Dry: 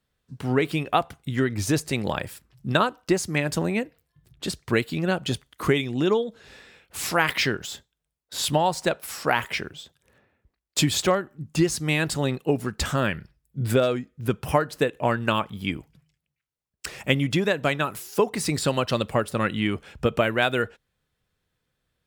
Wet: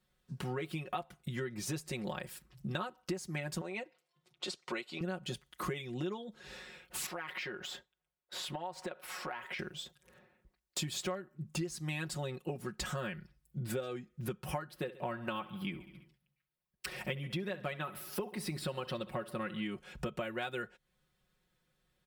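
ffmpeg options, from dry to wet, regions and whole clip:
ffmpeg -i in.wav -filter_complex "[0:a]asettb=1/sr,asplit=3[link_01][link_02][link_03];[link_01]atrim=end=3.614[link_04];[link_02]atrim=start=3.61:end=5.01,asetpts=PTS-STARTPTS,afade=type=in:duration=0.004:curve=qsin,afade=type=out:start_time=1.396:duration=0.004:curve=qsin,highpass=430,lowpass=6500,bandreject=frequency=1700:width=6.8[link_05];[link_03]atrim=start=5.006[link_06];[link_04][link_05]acrossfade=duration=0.004:curve1=hsin:curve2=qsin[link_07];[link_07][link_06]acrossfade=duration=0.004:curve1=qsin:curve2=hsin,asettb=1/sr,asplit=3[link_08][link_09][link_10];[link_08]atrim=end=7.064[link_11];[link_09]atrim=start=7.06:end=9.59,asetpts=PTS-STARTPTS,afade=type=in:duration=0.004:curve=qsin,afade=type=out:start_time=2.526:duration=0.004:curve=qsin,bass=frequency=250:gain=-11,treble=frequency=4000:gain=-13,acompressor=threshold=-35dB:ratio=2.5:attack=3.2:release=140:knee=1:detection=peak[link_12];[link_10]atrim=start=9.586[link_13];[link_11][link_12]acrossfade=duration=0.004:curve1=hsin:curve2=qsin[link_14];[link_14][link_13]acrossfade=duration=0.004:curve1=qsin:curve2=hsin,asettb=1/sr,asplit=3[link_15][link_16][link_17];[link_15]atrim=end=14.694[link_18];[link_16]atrim=start=14.69:end=19.63,asetpts=PTS-STARTPTS,afade=type=in:duration=0.004:curve=qsin,afade=type=out:start_time=4.936:duration=0.004:curve=qsin,equalizer=frequency=6900:width=2:gain=-11.5,aecho=1:1:67|134|201|268|335:0.119|0.0689|0.04|0.0232|0.0134,atrim=end_sample=217854[link_19];[link_17]atrim=start=19.626[link_20];[link_18][link_19]acrossfade=duration=0.004:curve1=hsin:curve2=qsin[link_21];[link_21][link_20]acrossfade=duration=0.004:curve1=qsin:curve2=hsin,aecho=1:1:5.5:0.87,acompressor=threshold=-35dB:ratio=4,volume=-3dB" out.wav

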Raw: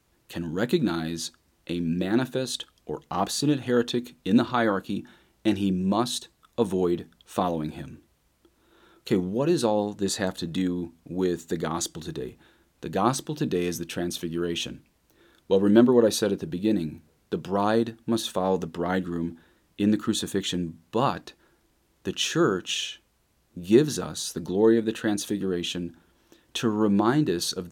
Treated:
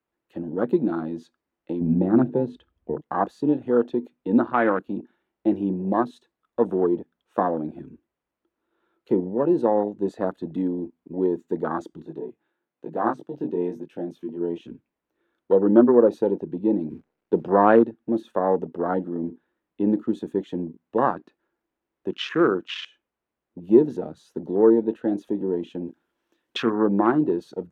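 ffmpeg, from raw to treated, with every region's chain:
ffmpeg -i in.wav -filter_complex "[0:a]asettb=1/sr,asplit=3[link_01][link_02][link_03];[link_01]atrim=end=1.814[link_04];[link_02]atrim=start=1.81:end=3.01,asetpts=PTS-STARTPTS,afade=type=in:duration=0.004:curve=qsin,afade=type=out:start_time=1.196:duration=0.004:curve=qsin,bass=frequency=250:gain=12,treble=frequency=4000:gain=-11,bandreject=frequency=50:width_type=h:width=6,bandreject=frequency=100:width_type=h:width=6,bandreject=frequency=150:width_type=h:width=6,bandreject=frequency=200:width_type=h:width=6,bandreject=frequency=250:width_type=h:width=6,bandreject=frequency=300:width_type=h:width=6,bandreject=frequency=350:width_type=h:width=6[link_05];[link_03]atrim=start=3.006[link_06];[link_04][link_05]acrossfade=duration=0.004:curve1=hsin:curve2=qsin[link_07];[link_07][link_06]acrossfade=duration=0.004:curve1=qsin:curve2=hsin,asettb=1/sr,asplit=3[link_08][link_09][link_10];[link_08]atrim=end=12.024[link_11];[link_09]atrim=start=12.02:end=14.67,asetpts=PTS-STARTPTS,afade=type=in:duration=0.004:curve=qsin,afade=type=out:start_time=2.646:duration=0.004:curve=qsin,highpass=100,deesser=0.55,flanger=delay=18:depth=5.3:speed=1[link_12];[link_10]atrim=start=14.666[link_13];[link_11][link_12]acrossfade=duration=0.004:curve1=hsin:curve2=qsin[link_14];[link_14][link_13]acrossfade=duration=0.004:curve1=qsin:curve2=hsin,asettb=1/sr,asplit=3[link_15][link_16][link_17];[link_15]atrim=end=16.904[link_18];[link_16]atrim=start=16.9:end=17.84,asetpts=PTS-STARTPTS,afade=type=in:duration=0.004:curve=qsin,afade=type=out:start_time=0.936:duration=0.004:curve=qsin,lowpass=frequency=6900:width=0.5412,lowpass=frequency=6900:width=1.3066,acontrast=24,acrusher=bits=9:dc=4:mix=0:aa=0.000001[link_19];[link_17]atrim=start=17.836[link_20];[link_18][link_19]acrossfade=duration=0.004:curve1=hsin:curve2=qsin[link_21];[link_21][link_20]acrossfade=duration=0.004:curve1=qsin:curve2=hsin,asettb=1/sr,asplit=3[link_22][link_23][link_24];[link_22]atrim=end=25.854[link_25];[link_23]atrim=start=25.85:end=26.76,asetpts=PTS-STARTPTS,afade=type=in:duration=0.004:curve=qsin,afade=type=out:start_time=0.906:duration=0.004:curve=qsin,highshelf=frequency=2800:gain=10.5,asplit=2[link_26][link_27];[link_27]adelay=26,volume=-12dB[link_28];[link_26][link_28]amix=inputs=2:normalize=0,atrim=end_sample=40131[link_29];[link_24]atrim=start=26.756[link_30];[link_25][link_29]acrossfade=duration=0.004:curve1=hsin:curve2=qsin[link_31];[link_31][link_30]acrossfade=duration=0.004:curve1=qsin:curve2=hsin,lowshelf=frequency=160:gain=6,afwtdn=0.0316,acrossover=split=230 2700:gain=0.112 1 0.158[link_32][link_33][link_34];[link_32][link_33][link_34]amix=inputs=3:normalize=0,volume=3.5dB" out.wav

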